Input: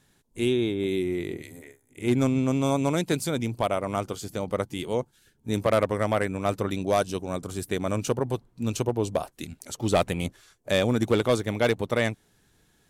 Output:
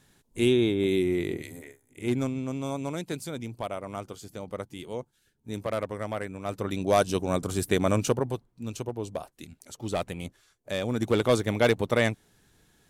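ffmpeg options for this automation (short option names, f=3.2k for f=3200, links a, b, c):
-af "volume=22.5dB,afade=t=out:st=1.52:d=0.83:silence=0.316228,afade=t=in:st=6.45:d=0.79:silence=0.251189,afade=t=out:st=7.86:d=0.62:silence=0.266073,afade=t=in:st=10.8:d=0.58:silence=0.375837"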